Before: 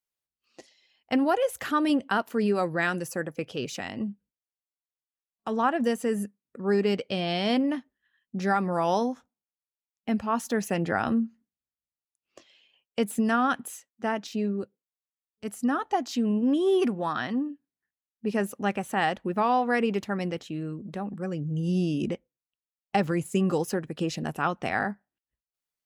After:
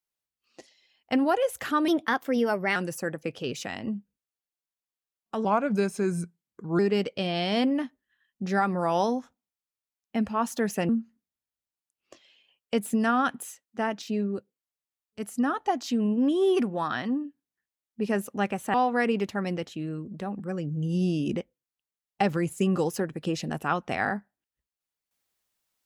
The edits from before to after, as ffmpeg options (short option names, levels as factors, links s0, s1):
-filter_complex "[0:a]asplit=7[s0][s1][s2][s3][s4][s5][s6];[s0]atrim=end=1.884[s7];[s1]atrim=start=1.88:end=2.89,asetpts=PTS-STARTPTS,asetrate=50715,aresample=44100,atrim=end_sample=38731,asetpts=PTS-STARTPTS[s8];[s2]atrim=start=2.886:end=5.584[s9];[s3]atrim=start=5.58:end=6.72,asetpts=PTS-STARTPTS,asetrate=37485,aresample=44100[s10];[s4]atrim=start=6.716:end=10.822[s11];[s5]atrim=start=11.138:end=18.992[s12];[s6]atrim=start=19.478[s13];[s7][s8]acrossfade=d=0.004:c1=hsin:c2=hsin[s14];[s14][s9]acrossfade=d=0.004:c1=hsin:c2=hsin[s15];[s15][s10]acrossfade=d=0.004:c1=hsin:c2=hsin[s16];[s16][s11]acrossfade=d=0.004:c1=hsin:c2=hsin[s17];[s17][s12]acrossfade=d=0.004:c1=hsin:c2=hsin[s18];[s18][s13]acrossfade=d=0.004:c1=hsin:c2=hsin"